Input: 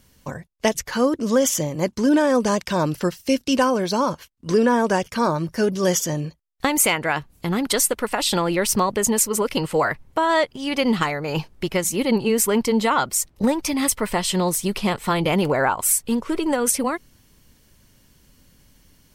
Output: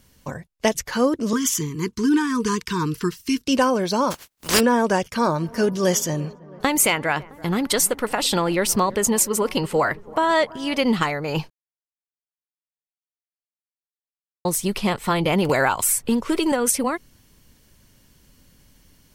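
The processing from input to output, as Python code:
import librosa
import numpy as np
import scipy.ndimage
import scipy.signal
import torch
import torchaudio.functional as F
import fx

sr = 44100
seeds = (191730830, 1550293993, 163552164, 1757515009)

y = fx.cheby1_bandstop(x, sr, low_hz=460.0, high_hz=930.0, order=5, at=(1.33, 3.45))
y = fx.spec_flatten(y, sr, power=0.34, at=(4.1, 4.59), fade=0.02)
y = fx.echo_wet_lowpass(y, sr, ms=332, feedback_pct=64, hz=1500.0, wet_db=-21, at=(5.38, 10.79), fade=0.02)
y = fx.band_squash(y, sr, depth_pct=70, at=(15.49, 16.52))
y = fx.edit(y, sr, fx.silence(start_s=11.5, length_s=2.95), tone=tone)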